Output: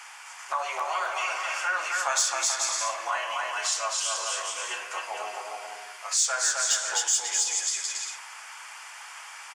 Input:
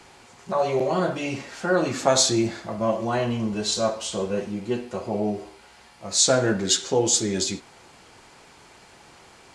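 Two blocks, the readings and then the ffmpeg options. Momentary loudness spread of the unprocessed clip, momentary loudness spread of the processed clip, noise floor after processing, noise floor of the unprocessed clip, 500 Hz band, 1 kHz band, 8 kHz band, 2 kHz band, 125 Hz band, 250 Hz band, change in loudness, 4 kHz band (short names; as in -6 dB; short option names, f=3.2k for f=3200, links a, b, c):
11 LU, 18 LU, -44 dBFS, -51 dBFS, -14.5 dB, 0.0 dB, +1.0 dB, +4.0 dB, under -40 dB, under -30 dB, -3.0 dB, -3.0 dB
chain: -filter_complex "[0:a]highpass=f=1k:w=0.5412,highpass=f=1k:w=1.3066,equalizer=f=4k:w=4.6:g=-13.5,aecho=1:1:260|429|538.8|610.3|656.7:0.631|0.398|0.251|0.158|0.1,asplit=2[a][b];[b]asoftclip=type=tanh:threshold=-19.5dB,volume=-5dB[c];[a][c]amix=inputs=2:normalize=0,acompressor=threshold=-35dB:ratio=2,volume=5dB"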